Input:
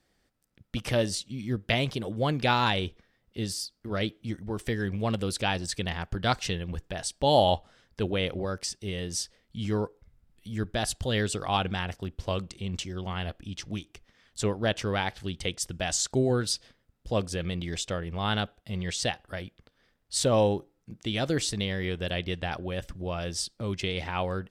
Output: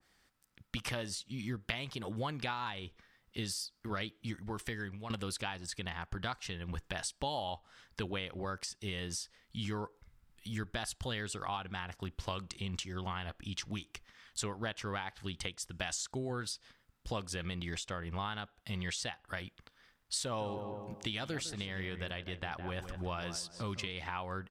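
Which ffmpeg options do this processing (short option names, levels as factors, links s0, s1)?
-filter_complex "[0:a]asplit=3[s0][s1][s2];[s0]afade=t=out:st=20.39:d=0.02[s3];[s1]asplit=2[s4][s5];[s5]adelay=157,lowpass=f=1800:p=1,volume=0.316,asplit=2[s6][s7];[s7]adelay=157,lowpass=f=1800:p=1,volume=0.43,asplit=2[s8][s9];[s9]adelay=157,lowpass=f=1800:p=1,volume=0.43,asplit=2[s10][s11];[s11]adelay=157,lowpass=f=1800:p=1,volume=0.43,asplit=2[s12][s13];[s13]adelay=157,lowpass=f=1800:p=1,volume=0.43[s14];[s4][s6][s8][s10][s12][s14]amix=inputs=6:normalize=0,afade=t=in:st=20.39:d=0.02,afade=t=out:st=23.87:d=0.02[s15];[s2]afade=t=in:st=23.87:d=0.02[s16];[s3][s15][s16]amix=inputs=3:normalize=0,asplit=2[s17][s18];[s17]atrim=end=5.1,asetpts=PTS-STARTPTS,afade=t=out:st=4.26:d=0.84:silence=0.149624[s19];[s18]atrim=start=5.1,asetpts=PTS-STARTPTS,afade=t=in:d=0.004:c=hsin:silence=0.149624[s20];[s19][s20]concat=n=2:v=0:a=1,lowshelf=f=770:t=q:w=1.5:g=-6.5,acompressor=threshold=0.0126:ratio=6,adynamicequalizer=threshold=0.00224:dfrequency=1800:dqfactor=0.7:tfrequency=1800:tqfactor=0.7:attack=5:release=100:ratio=0.375:range=3:mode=cutabove:tftype=highshelf,volume=1.5"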